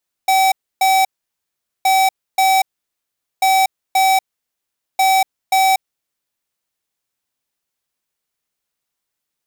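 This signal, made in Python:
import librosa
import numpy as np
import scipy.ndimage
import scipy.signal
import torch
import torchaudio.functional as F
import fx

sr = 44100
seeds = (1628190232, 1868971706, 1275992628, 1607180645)

y = fx.beep_pattern(sr, wave='square', hz=765.0, on_s=0.24, off_s=0.29, beeps=2, pause_s=0.8, groups=4, level_db=-13.0)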